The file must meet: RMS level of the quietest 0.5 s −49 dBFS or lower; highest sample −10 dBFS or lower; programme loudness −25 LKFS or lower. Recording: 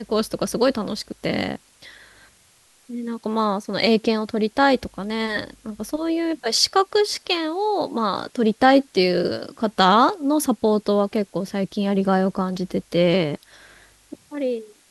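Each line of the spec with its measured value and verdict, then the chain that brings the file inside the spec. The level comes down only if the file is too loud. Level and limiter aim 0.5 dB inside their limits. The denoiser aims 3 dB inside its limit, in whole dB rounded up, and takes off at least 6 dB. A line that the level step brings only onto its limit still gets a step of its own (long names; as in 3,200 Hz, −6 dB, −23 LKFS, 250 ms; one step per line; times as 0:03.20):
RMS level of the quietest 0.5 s −56 dBFS: in spec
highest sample −2.5 dBFS: out of spec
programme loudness −21.5 LKFS: out of spec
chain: level −4 dB
brickwall limiter −10.5 dBFS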